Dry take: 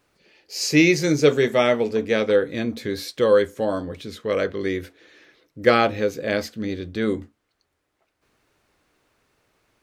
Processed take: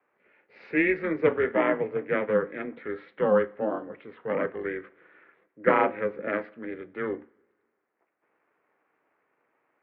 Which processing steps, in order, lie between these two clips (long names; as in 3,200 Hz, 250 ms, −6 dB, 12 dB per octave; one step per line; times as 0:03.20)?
coupled-rooms reverb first 0.44 s, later 1.7 s, from −18 dB, DRR 16 dB
ring modulation 160 Hz
single-sideband voice off tune −150 Hz 460–2,400 Hz